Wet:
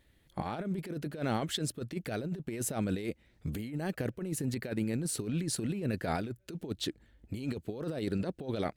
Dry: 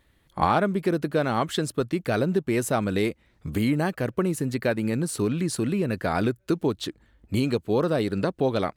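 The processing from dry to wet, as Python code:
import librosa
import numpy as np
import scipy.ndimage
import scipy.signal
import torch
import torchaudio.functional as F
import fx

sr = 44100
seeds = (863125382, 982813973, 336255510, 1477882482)

y = fx.peak_eq(x, sr, hz=1100.0, db=-8.0, octaves=0.74)
y = fx.over_compress(y, sr, threshold_db=-27.0, ratio=-0.5)
y = y * 10.0 ** (-6.0 / 20.0)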